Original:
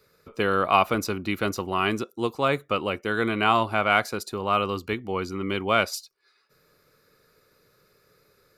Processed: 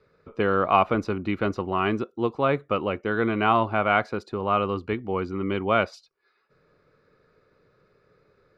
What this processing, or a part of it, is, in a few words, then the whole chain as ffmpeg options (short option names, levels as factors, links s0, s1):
phone in a pocket: -af "lowpass=3800,highshelf=f=2300:g=-10.5,volume=1.26"